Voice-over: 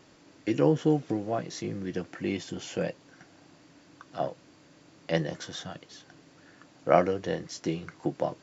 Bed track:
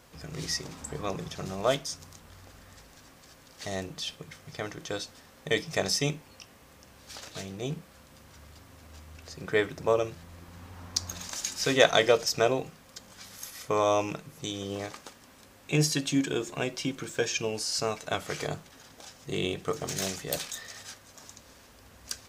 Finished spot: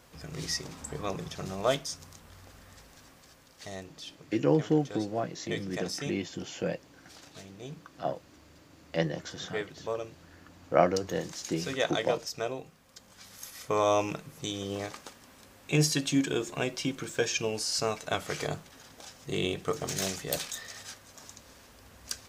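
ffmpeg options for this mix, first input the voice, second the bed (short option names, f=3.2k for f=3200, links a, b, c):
-filter_complex "[0:a]adelay=3850,volume=-1.5dB[a];[1:a]volume=8dB,afade=t=out:st=3.03:d=0.87:silence=0.398107,afade=t=in:st=12.67:d=1.31:silence=0.354813[b];[a][b]amix=inputs=2:normalize=0"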